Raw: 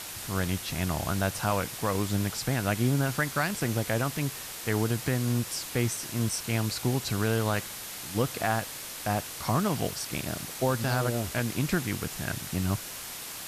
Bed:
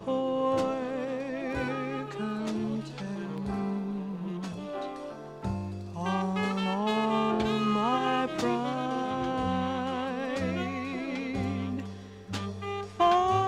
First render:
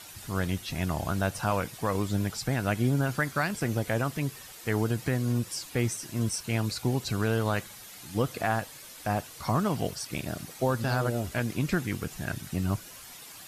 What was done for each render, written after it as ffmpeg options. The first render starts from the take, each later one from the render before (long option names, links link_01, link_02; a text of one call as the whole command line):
ffmpeg -i in.wav -af "afftdn=noise_reduction=10:noise_floor=-40" out.wav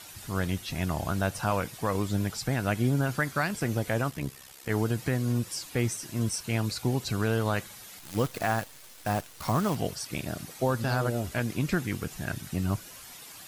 ffmpeg -i in.wav -filter_complex "[0:a]asplit=3[link_01][link_02][link_03];[link_01]afade=type=out:start_time=4.09:duration=0.02[link_04];[link_02]tremolo=f=67:d=0.788,afade=type=in:start_time=4.09:duration=0.02,afade=type=out:start_time=4.69:duration=0.02[link_05];[link_03]afade=type=in:start_time=4.69:duration=0.02[link_06];[link_04][link_05][link_06]amix=inputs=3:normalize=0,asettb=1/sr,asplit=3[link_07][link_08][link_09];[link_07]atrim=end=7.994[link_10];[link_08]atrim=start=7.99:end=9.75,asetpts=PTS-STARTPTS,afade=type=in:duration=0.004:curve=qsin,afade=type=out:start_time=1.756:duration=0.004:curve=qsin,acrusher=bits=7:dc=4:mix=0:aa=0.000001[link_11];[link_09]atrim=start=9.746[link_12];[link_10][link_11]acrossfade=duration=0.004:curve1=hsin:curve2=qsin[link_13];[link_13][link_12]acrossfade=duration=0.004:curve1=qsin:curve2=hsin" out.wav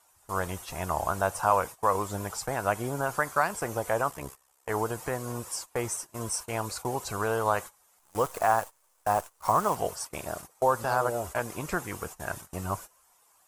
ffmpeg -i in.wav -af "agate=range=-19dB:threshold=-37dB:ratio=16:detection=peak,equalizer=frequency=125:width_type=o:width=1:gain=-9,equalizer=frequency=250:width_type=o:width=1:gain=-9,equalizer=frequency=500:width_type=o:width=1:gain=3,equalizer=frequency=1000:width_type=o:width=1:gain=10,equalizer=frequency=2000:width_type=o:width=1:gain=-4,equalizer=frequency=4000:width_type=o:width=1:gain=-8,equalizer=frequency=8000:width_type=o:width=1:gain=5" out.wav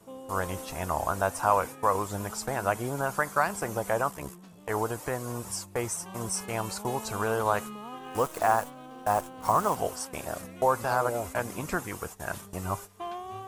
ffmpeg -i in.wav -i bed.wav -filter_complex "[1:a]volume=-14.5dB[link_01];[0:a][link_01]amix=inputs=2:normalize=0" out.wav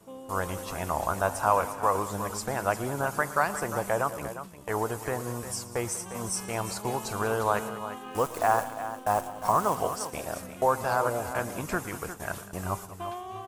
ffmpeg -i in.wav -af "aecho=1:1:115|195|353:0.126|0.141|0.266" out.wav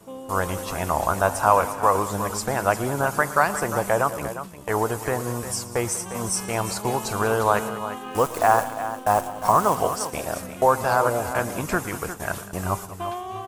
ffmpeg -i in.wav -af "volume=6dB" out.wav